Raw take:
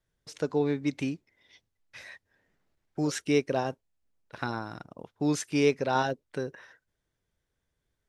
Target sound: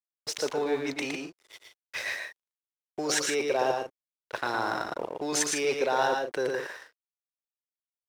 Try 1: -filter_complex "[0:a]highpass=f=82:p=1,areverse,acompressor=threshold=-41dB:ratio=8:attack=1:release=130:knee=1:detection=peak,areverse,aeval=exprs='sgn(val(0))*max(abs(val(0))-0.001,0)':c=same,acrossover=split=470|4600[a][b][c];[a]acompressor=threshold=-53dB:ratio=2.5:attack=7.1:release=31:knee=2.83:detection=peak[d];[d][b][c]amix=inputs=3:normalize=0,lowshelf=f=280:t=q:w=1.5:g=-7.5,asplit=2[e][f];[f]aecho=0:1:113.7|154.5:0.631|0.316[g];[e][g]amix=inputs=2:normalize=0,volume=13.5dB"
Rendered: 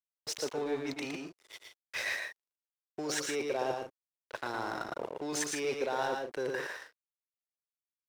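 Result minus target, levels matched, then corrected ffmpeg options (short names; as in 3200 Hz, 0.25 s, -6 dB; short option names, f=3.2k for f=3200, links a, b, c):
compressor: peak gain reduction +7 dB
-filter_complex "[0:a]highpass=f=82:p=1,areverse,acompressor=threshold=-33dB:ratio=8:attack=1:release=130:knee=1:detection=peak,areverse,aeval=exprs='sgn(val(0))*max(abs(val(0))-0.001,0)':c=same,acrossover=split=470|4600[a][b][c];[a]acompressor=threshold=-53dB:ratio=2.5:attack=7.1:release=31:knee=2.83:detection=peak[d];[d][b][c]amix=inputs=3:normalize=0,lowshelf=f=280:t=q:w=1.5:g=-7.5,asplit=2[e][f];[f]aecho=0:1:113.7|154.5:0.631|0.316[g];[e][g]amix=inputs=2:normalize=0,volume=13.5dB"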